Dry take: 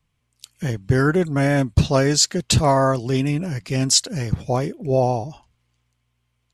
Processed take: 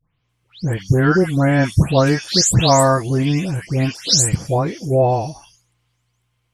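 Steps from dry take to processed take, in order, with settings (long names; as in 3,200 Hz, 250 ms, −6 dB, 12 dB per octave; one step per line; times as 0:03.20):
every frequency bin delayed by itself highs late, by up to 290 ms
level +4 dB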